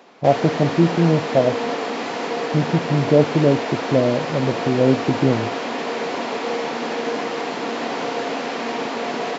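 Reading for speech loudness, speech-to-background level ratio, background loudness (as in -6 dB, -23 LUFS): -19.5 LUFS, 5.5 dB, -25.0 LUFS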